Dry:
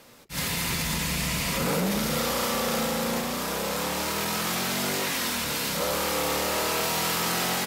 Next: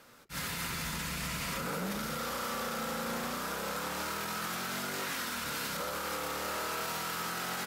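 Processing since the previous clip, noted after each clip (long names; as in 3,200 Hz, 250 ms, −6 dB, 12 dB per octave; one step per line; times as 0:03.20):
parametric band 1,400 Hz +9 dB 0.52 octaves
brickwall limiter −20 dBFS, peak gain reduction 7 dB
level −7 dB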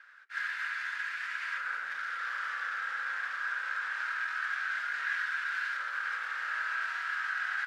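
four-pole ladder band-pass 1,700 Hz, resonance 80%
level +9 dB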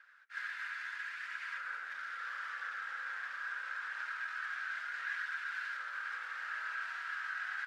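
flanger 0.75 Hz, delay 0 ms, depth 3.4 ms, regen −69%
level −2 dB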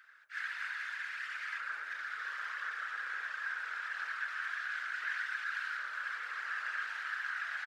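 random phases in short frames
three-band delay without the direct sound highs, mids, lows 40/70 ms, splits 200/990 Hz
level +3 dB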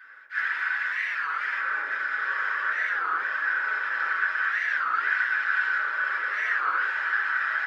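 convolution reverb RT60 0.35 s, pre-delay 3 ms, DRR −5.5 dB
wow of a warped record 33 1/3 rpm, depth 250 cents
level −2 dB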